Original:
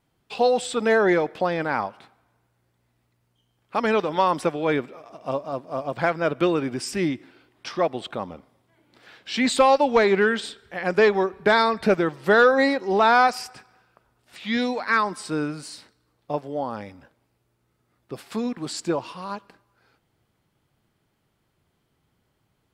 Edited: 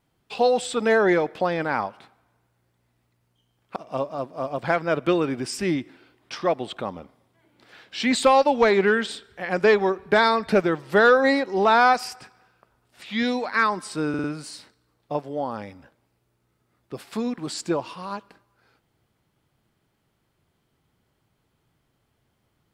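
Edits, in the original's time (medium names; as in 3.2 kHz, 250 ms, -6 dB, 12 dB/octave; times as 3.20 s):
3.76–5.10 s: delete
15.43 s: stutter 0.05 s, 4 plays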